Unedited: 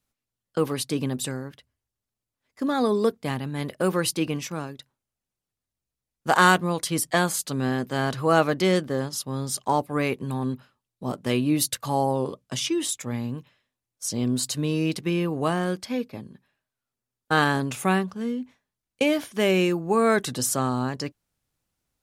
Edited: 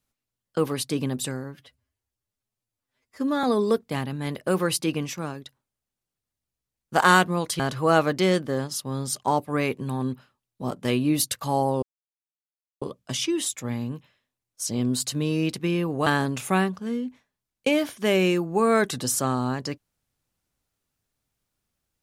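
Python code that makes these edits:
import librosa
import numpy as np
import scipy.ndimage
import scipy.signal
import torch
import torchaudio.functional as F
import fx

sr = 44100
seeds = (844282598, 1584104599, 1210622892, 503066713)

y = fx.edit(x, sr, fx.stretch_span(start_s=1.44, length_s=1.33, factor=1.5),
    fx.cut(start_s=6.93, length_s=1.08),
    fx.insert_silence(at_s=12.24, length_s=0.99),
    fx.cut(start_s=15.49, length_s=1.92), tone=tone)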